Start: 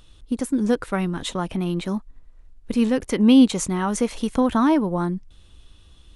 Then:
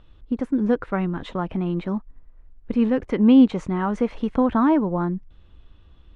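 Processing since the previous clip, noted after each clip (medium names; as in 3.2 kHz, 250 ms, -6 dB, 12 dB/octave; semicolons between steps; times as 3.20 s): low-pass 2 kHz 12 dB/octave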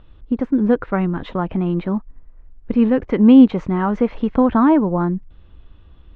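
distance through air 180 m; trim +5 dB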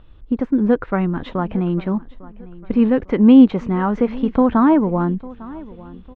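feedback delay 851 ms, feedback 39%, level -20 dB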